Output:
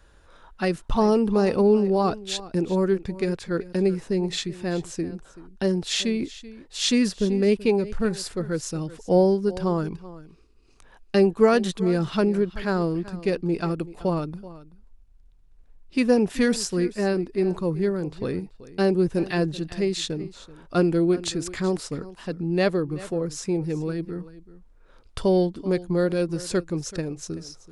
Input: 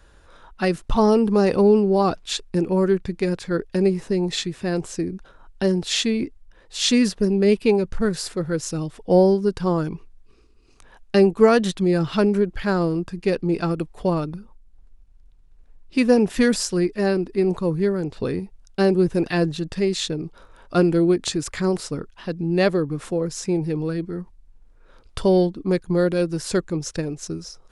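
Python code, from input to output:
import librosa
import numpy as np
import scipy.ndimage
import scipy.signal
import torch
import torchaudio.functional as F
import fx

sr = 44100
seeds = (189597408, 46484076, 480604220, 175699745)

y = x + 10.0 ** (-17.5 / 20.0) * np.pad(x, (int(382 * sr / 1000.0), 0))[:len(x)]
y = F.gain(torch.from_numpy(y), -3.0).numpy()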